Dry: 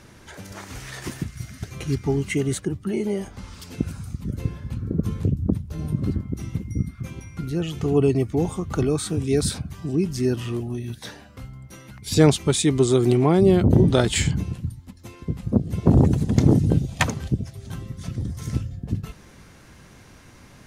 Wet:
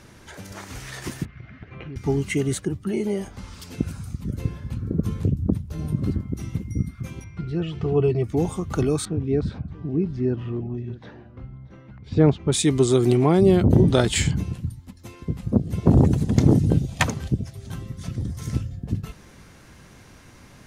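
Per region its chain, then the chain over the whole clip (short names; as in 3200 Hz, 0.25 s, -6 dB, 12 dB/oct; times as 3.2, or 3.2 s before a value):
1.25–1.96 LPF 2600 Hz 24 dB/oct + compressor, threshold -30 dBFS + low shelf 150 Hz -6.5 dB
7.24–8.24 air absorption 140 m + notch 6500 Hz, Q 5.7 + notch comb 270 Hz
9.05–12.52 tape spacing loss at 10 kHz 43 dB + echo 0.63 s -19.5 dB
whole clip: dry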